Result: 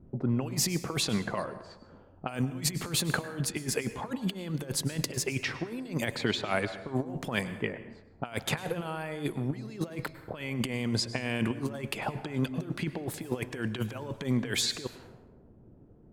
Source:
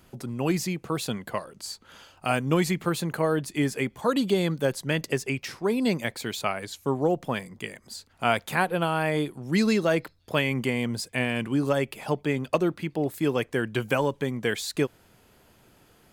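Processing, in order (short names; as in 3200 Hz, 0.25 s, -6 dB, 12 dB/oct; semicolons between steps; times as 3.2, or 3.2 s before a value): low-pass opened by the level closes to 310 Hz, open at -24 dBFS; negative-ratio compressor -31 dBFS, ratio -0.5; plate-style reverb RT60 1 s, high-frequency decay 0.6×, pre-delay 90 ms, DRR 12.5 dB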